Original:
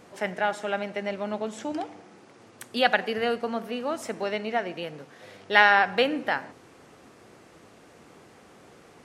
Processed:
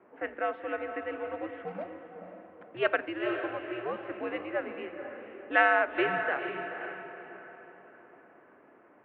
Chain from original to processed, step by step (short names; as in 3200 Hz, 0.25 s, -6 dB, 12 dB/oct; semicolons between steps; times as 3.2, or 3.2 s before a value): 1.67–2.77 sample sorter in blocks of 8 samples; wow and flutter 21 cents; mistuned SSB -120 Hz 390–2800 Hz; on a send: diffused feedback echo 0.489 s, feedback 45%, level -7.5 dB; on the sum: low-pass opened by the level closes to 1500 Hz, open at -20 dBFS; gain -5 dB